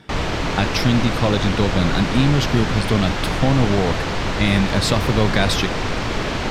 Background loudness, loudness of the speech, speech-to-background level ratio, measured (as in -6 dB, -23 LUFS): -23.0 LUFS, -20.5 LUFS, 2.5 dB